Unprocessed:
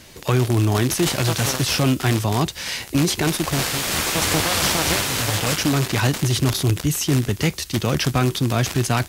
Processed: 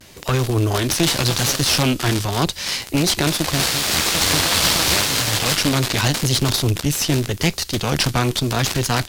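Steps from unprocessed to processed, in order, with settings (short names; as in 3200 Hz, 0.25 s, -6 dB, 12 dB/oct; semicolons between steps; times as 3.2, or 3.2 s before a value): dynamic EQ 4300 Hz, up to +6 dB, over -37 dBFS, Q 1.4; vibrato 0.83 Hz 66 cents; added harmonics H 4 -13 dB, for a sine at -6 dBFS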